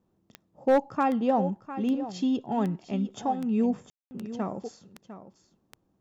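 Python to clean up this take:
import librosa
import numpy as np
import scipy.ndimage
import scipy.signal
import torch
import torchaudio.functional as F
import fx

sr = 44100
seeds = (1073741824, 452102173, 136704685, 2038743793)

y = fx.fix_declip(x, sr, threshold_db=-15.0)
y = fx.fix_declick_ar(y, sr, threshold=10.0)
y = fx.fix_ambience(y, sr, seeds[0], print_start_s=5.49, print_end_s=5.99, start_s=3.9, end_s=4.11)
y = fx.fix_echo_inverse(y, sr, delay_ms=703, level_db=-13.0)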